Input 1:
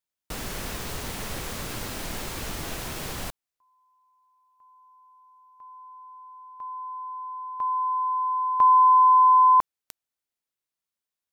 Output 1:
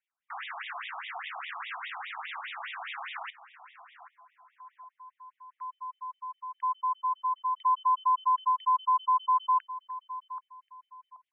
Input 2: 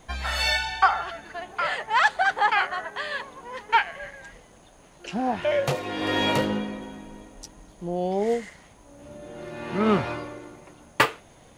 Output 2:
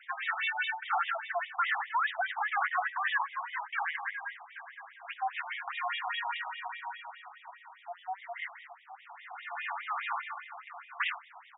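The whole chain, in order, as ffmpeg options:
ffmpeg -i in.wav -filter_complex "[0:a]highshelf=frequency=11000:gain=8.5,bandreject=frequency=50:width_type=h:width=6,bandreject=frequency=100:width_type=h:width=6,bandreject=frequency=150:width_type=h:width=6,bandreject=frequency=200:width_type=h:width=6,bandreject=frequency=250:width_type=h:width=6,areverse,acompressor=threshold=-28dB:ratio=16:attack=0.67:release=195:knee=1:detection=peak,areverse,aeval=exprs='0.211*sin(PI/2*2.82*val(0)/0.211)':channel_layout=same,adynamicsmooth=sensitivity=1.5:basefreq=3900,asplit=2[link_01][link_02];[link_02]adelay=780,lowpass=frequency=1600:poles=1,volume=-12dB,asplit=2[link_03][link_04];[link_04]adelay=780,lowpass=frequency=1600:poles=1,volume=0.31,asplit=2[link_05][link_06];[link_06]adelay=780,lowpass=frequency=1600:poles=1,volume=0.31[link_07];[link_03][link_05][link_07]amix=inputs=3:normalize=0[link_08];[link_01][link_08]amix=inputs=2:normalize=0,afftfilt=real='re*between(b*sr/1024,910*pow(2700/910,0.5+0.5*sin(2*PI*4.9*pts/sr))/1.41,910*pow(2700/910,0.5+0.5*sin(2*PI*4.9*pts/sr))*1.41)':imag='im*between(b*sr/1024,910*pow(2700/910,0.5+0.5*sin(2*PI*4.9*pts/sr))/1.41,910*pow(2700/910,0.5+0.5*sin(2*PI*4.9*pts/sr))*1.41)':win_size=1024:overlap=0.75,volume=-3.5dB" out.wav

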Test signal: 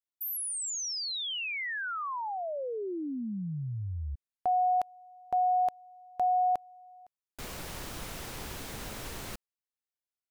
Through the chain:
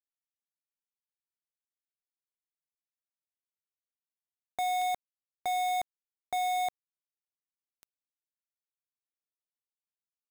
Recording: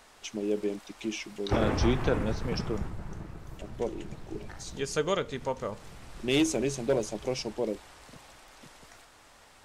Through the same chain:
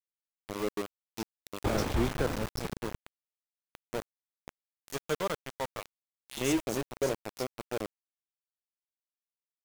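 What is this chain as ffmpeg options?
ffmpeg -i in.wav -filter_complex "[0:a]acrossover=split=3100[link_01][link_02];[link_01]adelay=130[link_03];[link_03][link_02]amix=inputs=2:normalize=0,aeval=exprs='val(0)*gte(abs(val(0)),0.0422)':channel_layout=same,volume=-3dB" out.wav

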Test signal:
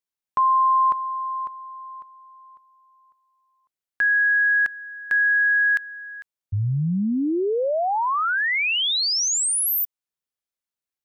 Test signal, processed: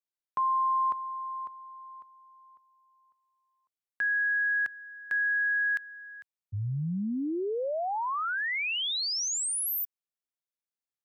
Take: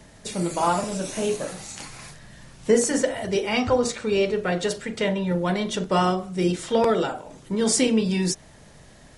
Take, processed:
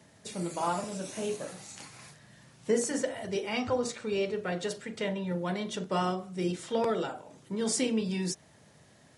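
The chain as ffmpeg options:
ffmpeg -i in.wav -af "highpass=frequency=85:width=0.5412,highpass=frequency=85:width=1.3066,volume=-8.5dB" out.wav

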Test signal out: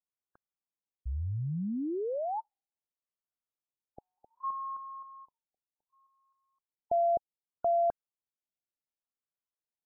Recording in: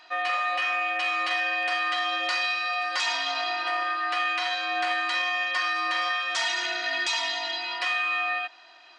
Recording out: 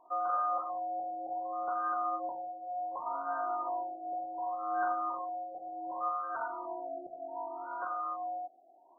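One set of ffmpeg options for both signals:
ffmpeg -i in.wav -af "acontrast=29,afftfilt=real='re*lt(b*sr/1024,800*pow(1600/800,0.5+0.5*sin(2*PI*0.67*pts/sr)))':imag='im*lt(b*sr/1024,800*pow(1600/800,0.5+0.5*sin(2*PI*0.67*pts/sr)))':win_size=1024:overlap=0.75,volume=-7.5dB" out.wav

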